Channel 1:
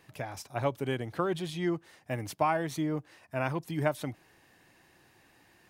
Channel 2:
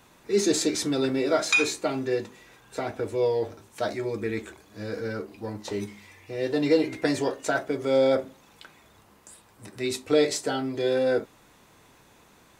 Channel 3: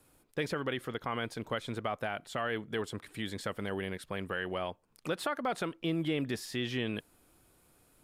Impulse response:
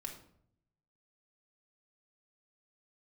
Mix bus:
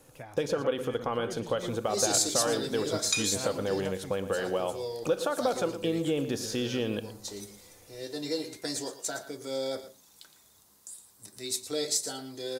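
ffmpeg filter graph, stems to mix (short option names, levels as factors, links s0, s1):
-filter_complex "[0:a]volume=0.422[s0];[1:a]aexciter=amount=6.6:drive=3:freq=3700,adelay=1600,volume=0.251,asplit=2[s1][s2];[s2]volume=0.224[s3];[2:a]equalizer=f=500:t=o:w=0.33:g=11,equalizer=f=800:t=o:w=0.33:g=4,equalizer=f=2000:t=o:w=0.33:g=-11,equalizer=f=6300:t=o:w=0.33:g=10,volume=1.41,asplit=3[s4][s5][s6];[s5]volume=0.376[s7];[s6]volume=0.178[s8];[s0][s4]amix=inputs=2:normalize=0,acompressor=threshold=0.0282:ratio=2.5,volume=1[s9];[3:a]atrim=start_sample=2205[s10];[s7][s10]afir=irnorm=-1:irlink=0[s11];[s3][s8]amix=inputs=2:normalize=0,aecho=0:1:115:1[s12];[s1][s9][s11][s12]amix=inputs=4:normalize=0"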